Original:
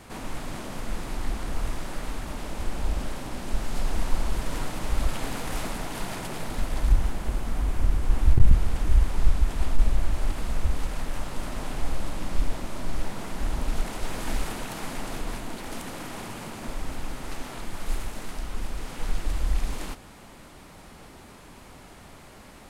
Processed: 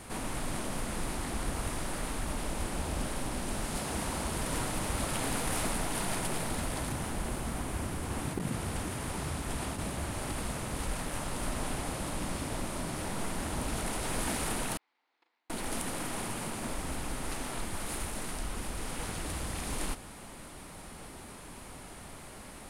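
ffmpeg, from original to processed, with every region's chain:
-filter_complex "[0:a]asettb=1/sr,asplit=3[s0][s1][s2];[s0]atrim=end=14.774[s3];[s1]atrim=start=14.77:end=15.5,asetpts=PTS-STARTPTS,afade=t=in:d=0.004:c=qsin,afade=t=out:st=0.726:d=0.004:c=qsin,agate=range=0.00794:threshold=0.0794:ratio=16:release=100:detection=peak,highpass=f=370:w=0.5412,highpass=f=370:w=1.3066,equalizer=f=410:t=q:w=4:g=-6,equalizer=f=600:t=q:w=4:g=-9,equalizer=f=880:t=q:w=4:g=3,equalizer=f=2100:t=q:w=4:g=6,equalizer=f=4100:t=q:w=4:g=4,lowpass=f=4700:w=0.5412,lowpass=f=4700:w=1.3066,asplit=2[s4][s5];[s5]adelay=38,volume=0.398[s6];[s4][s6]amix=inputs=2:normalize=0,atrim=end_sample=32193[s7];[s2]atrim=start=15.496[s8];[s3][s7]acrossfade=d=0.004:c1=hsin:c2=qsin[s9];[s9][s8]acrossfade=d=0.004:c1=qsin:c2=hsin,afftfilt=real='re*lt(hypot(re,im),0.501)':imag='im*lt(hypot(re,im),0.501)':win_size=1024:overlap=0.75,equalizer=f=9600:w=2.9:g=10.5"

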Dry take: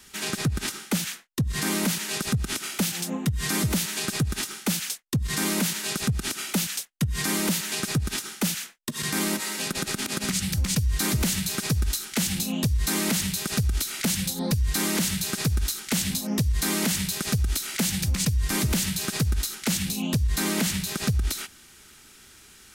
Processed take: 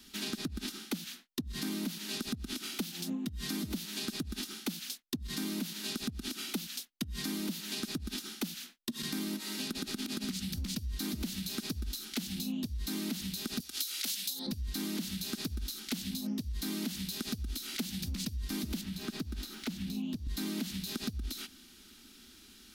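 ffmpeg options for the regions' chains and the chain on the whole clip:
-filter_complex "[0:a]asettb=1/sr,asplit=3[s0][s1][s2];[s0]atrim=end=13.604[s3];[s1]atrim=start=13.6:end=14.47,asetpts=PTS-STARTPTS,afade=t=in:d=0.004:c=qsin,afade=t=out:st=0.866:d=0.004:c=qsin,highpass=460,highshelf=f=2100:g=11.5[s4];[s2]atrim=start=14.466[s5];[s3][s4]acrossfade=d=0.004:c1=hsin:c2=qsin[s6];[s6][s5]acrossfade=d=0.004:c1=qsin:c2=hsin,asettb=1/sr,asplit=3[s7][s8][s9];[s7]atrim=end=18.814[s10];[s8]atrim=start=18.81:end=20.27,asetpts=PTS-STARTPTS,afade=t=in:d=0.004:c=qsin,afade=t=out:st=1.456:d=0.004:c=qsin,aeval=exprs='val(0)+0.5*0.00668*sgn(val(0))':c=same,acrossover=split=160|2300[s11][s12][s13];[s11]acompressor=threshold=0.0316:ratio=4[s14];[s12]acompressor=threshold=0.0251:ratio=4[s15];[s13]acompressor=threshold=0.0158:ratio=4[s16];[s14][s15][s16]amix=inputs=3:normalize=0,highshelf=f=5300:g=-4.5[s17];[s9]atrim=start=20.266[s18];[s10][s17]acrossfade=d=0.004:c1=hsin:c2=qsin[s19];[s19][s18]acrossfade=d=0.004:c1=qsin:c2=hsin,equalizer=f=125:t=o:w=1:g=-12,equalizer=f=250:t=o:w=1:g=12,equalizer=f=500:t=o:w=1:g=-8,equalizer=f=1000:t=o:w=1:g=-5,equalizer=f=2000:t=o:w=1:g=-6,equalizer=f=4000:t=o:w=1:g=5,equalizer=f=8000:t=o:w=1:g=-8,acompressor=threshold=0.0282:ratio=5,volume=0.708"

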